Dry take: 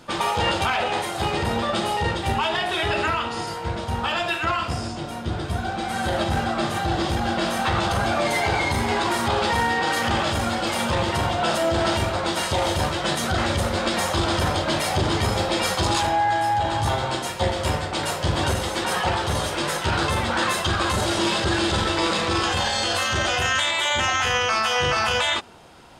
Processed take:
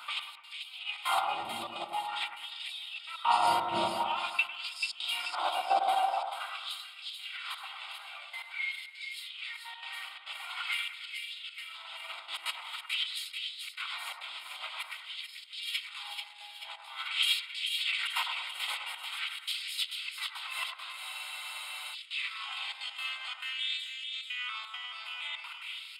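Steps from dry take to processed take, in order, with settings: compressor with a negative ratio -30 dBFS, ratio -0.5; high-pass sweep 93 Hz -> 1.9 kHz, 3.64–7.15 s; static phaser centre 1.7 kHz, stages 6; LFO high-pass sine 0.47 Hz 380–4800 Hz; trance gate "xxxx.x.xxxx.xxx" 171 bpm -24 dB; two-band feedback delay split 2 kHz, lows 101 ms, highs 437 ms, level -5.5 dB; spectral freeze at 21.02 s, 0.91 s; trim -3 dB

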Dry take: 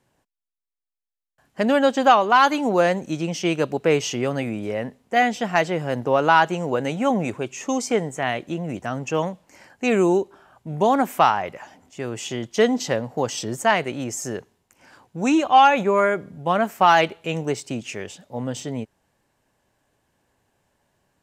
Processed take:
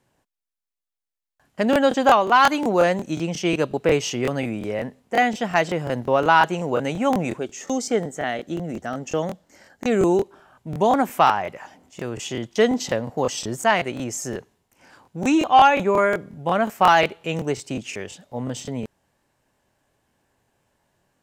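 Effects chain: 7.39–10.04 s: graphic EQ with 31 bands 125 Hz -9 dB, 1 kHz -9 dB, 2.5 kHz -9 dB, 10 kHz -6 dB; crackling interface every 0.18 s, samples 1024, repeat, from 0.63 s

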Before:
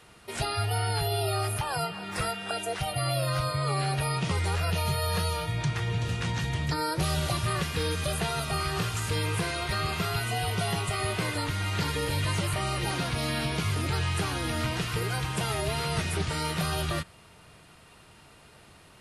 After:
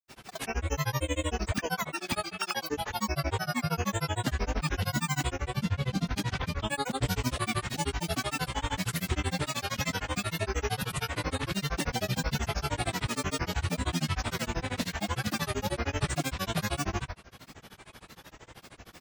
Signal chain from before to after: in parallel at +2 dB: compression, threshold -44 dBFS, peak gain reduction 18.5 dB; on the sum: granulator 82 ms, grains 13 per s, pitch spread up and down by 12 st

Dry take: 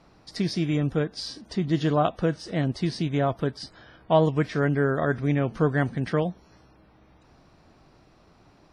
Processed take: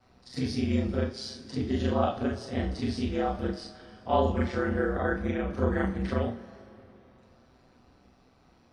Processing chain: short-time spectra conjugated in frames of 93 ms; ring modulator 63 Hz; two-slope reverb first 0.29 s, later 3.1 s, from -20 dB, DRR 3 dB

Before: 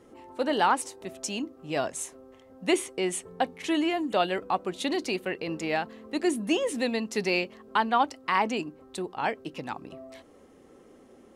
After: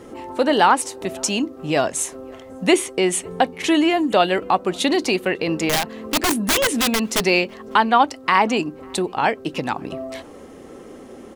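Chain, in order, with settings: in parallel at +2.5 dB: compression 8:1, threshold -37 dBFS, peak gain reduction 18 dB; 5.69–7.26 s: on the sum: integer overflow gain 20 dB; echo from a far wall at 94 m, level -29 dB; trim +7 dB

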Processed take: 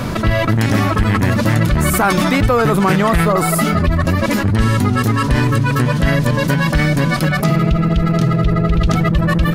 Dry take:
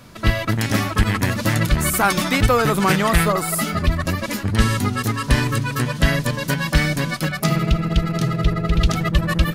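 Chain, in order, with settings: treble shelf 2.2 kHz -9 dB; level flattener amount 70%

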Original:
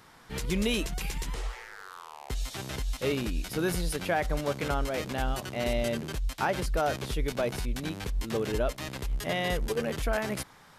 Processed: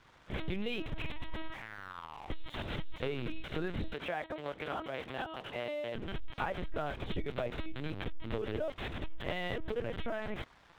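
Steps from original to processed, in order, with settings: LPC vocoder at 8 kHz pitch kept; compression, threshold -31 dBFS, peak gain reduction 9 dB; crossover distortion -58.5 dBFS; 3.94–5.95 s: high-pass 320 Hz 6 dB/octave

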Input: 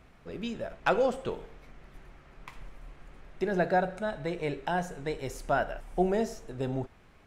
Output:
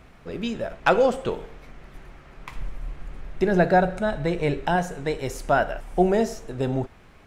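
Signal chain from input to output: 2.51–4.76 s: bass shelf 150 Hz +8 dB; trim +7 dB

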